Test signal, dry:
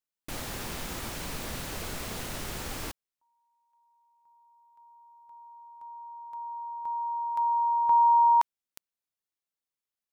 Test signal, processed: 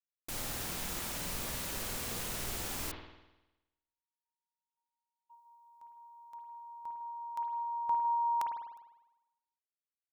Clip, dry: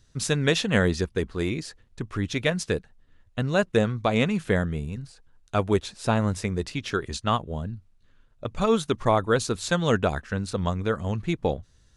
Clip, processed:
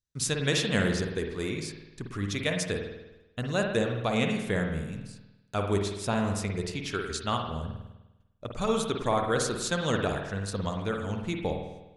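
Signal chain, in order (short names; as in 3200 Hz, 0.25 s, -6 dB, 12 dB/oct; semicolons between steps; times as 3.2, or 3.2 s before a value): gate -52 dBFS, range -26 dB; high shelf 4400 Hz +9.5 dB; spring tank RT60 1 s, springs 50 ms, chirp 30 ms, DRR 2.5 dB; gain -6.5 dB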